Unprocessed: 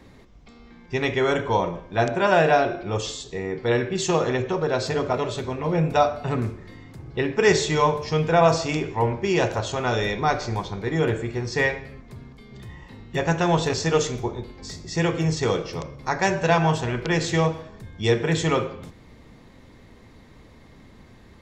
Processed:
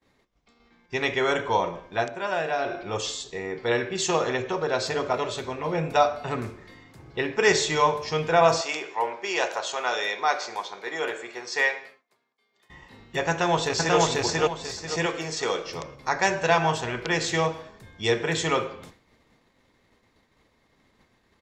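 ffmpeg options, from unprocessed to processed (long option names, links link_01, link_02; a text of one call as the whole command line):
ffmpeg -i in.wav -filter_complex "[0:a]asettb=1/sr,asplit=3[link_01][link_02][link_03];[link_01]atrim=end=8.614[link_04];[link_02]atrim=start=8.61:end=12.7,asetpts=PTS-STARTPTS,afade=type=in:duration=0.004:curve=qsin,afade=type=out:start_time=4.086:duration=0.004:curve=qsin,highpass=500[link_05];[link_03]atrim=start=12.696[link_06];[link_04][link_05]acrossfade=duration=0.004:curve1=hsin:curve2=qsin[link_07];[link_07][link_06]acrossfade=duration=0.004:curve1=qsin:curve2=hsin,asplit=2[link_08][link_09];[link_09]afade=type=in:start_time=13.3:duration=0.01,afade=type=out:start_time=13.98:duration=0.01,aecho=0:1:490|980|1470|1960:1|0.3|0.09|0.027[link_10];[link_08][link_10]amix=inputs=2:normalize=0,asettb=1/sr,asplit=3[link_11][link_12][link_13];[link_11]atrim=end=15.064[link_14];[link_12]atrim=start=15.06:end=15.67,asetpts=PTS-STARTPTS,afade=type=in:duration=0.004:curve=qsin,afade=type=out:start_time=0.606:duration=0.004:curve=qsin,equalizer=frequency=95:width_type=o:width=1.8:gain=-14.5[link_15];[link_13]atrim=start=15.666[link_16];[link_14][link_15]acrossfade=duration=0.004:curve1=hsin:curve2=qsin[link_17];[link_17][link_16]acrossfade=duration=0.004:curve1=qsin:curve2=hsin,asplit=3[link_18][link_19][link_20];[link_18]atrim=end=2.1,asetpts=PTS-STARTPTS,afade=type=out:start_time=1.93:duration=0.17:silence=0.398107[link_21];[link_19]atrim=start=2.1:end=2.57,asetpts=PTS-STARTPTS,volume=-8dB[link_22];[link_20]atrim=start=2.57,asetpts=PTS-STARTPTS,afade=type=in:duration=0.17:silence=0.398107[link_23];[link_21][link_22][link_23]concat=n=3:v=0:a=1,agate=range=-33dB:threshold=-40dB:ratio=3:detection=peak,lowshelf=frequency=320:gain=-11.5,volume=1dB" out.wav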